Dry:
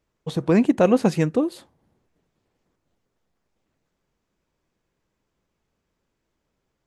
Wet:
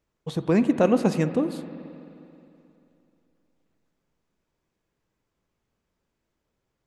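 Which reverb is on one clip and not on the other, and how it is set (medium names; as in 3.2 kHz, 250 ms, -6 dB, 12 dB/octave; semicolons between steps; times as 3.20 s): spring tank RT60 2.9 s, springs 44/53 ms, chirp 50 ms, DRR 10.5 dB; trim -3 dB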